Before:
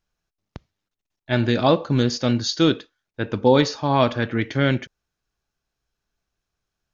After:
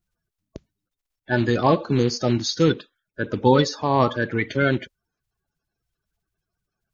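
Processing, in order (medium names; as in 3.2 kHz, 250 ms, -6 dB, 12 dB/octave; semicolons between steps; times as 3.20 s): coarse spectral quantiser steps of 30 dB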